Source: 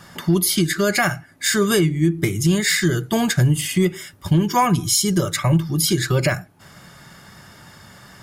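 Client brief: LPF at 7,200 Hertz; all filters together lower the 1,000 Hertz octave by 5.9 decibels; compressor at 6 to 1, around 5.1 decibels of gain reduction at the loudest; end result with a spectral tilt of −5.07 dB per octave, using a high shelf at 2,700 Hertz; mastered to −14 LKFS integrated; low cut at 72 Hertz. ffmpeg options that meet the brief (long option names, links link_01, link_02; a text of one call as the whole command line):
ffmpeg -i in.wav -af "highpass=72,lowpass=7200,equalizer=frequency=1000:width_type=o:gain=-7,highshelf=frequency=2700:gain=-5,acompressor=threshold=-18dB:ratio=6,volume=10dB" out.wav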